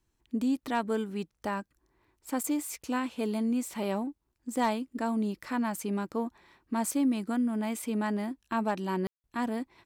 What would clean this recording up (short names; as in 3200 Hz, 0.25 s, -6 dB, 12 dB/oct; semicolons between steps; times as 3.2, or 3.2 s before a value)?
clip repair -19.5 dBFS; room tone fill 9.07–9.24